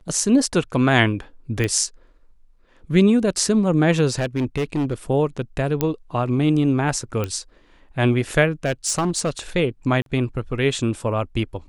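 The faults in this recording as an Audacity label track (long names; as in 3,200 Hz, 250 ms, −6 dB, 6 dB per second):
1.640000	1.640000	click −11 dBFS
4.090000	4.940000	clipping −17.5 dBFS
5.810000	5.810000	click −6 dBFS
7.240000	7.240000	click −12 dBFS
8.650000	9.380000	clipping −16.5 dBFS
10.020000	10.060000	drop-out 42 ms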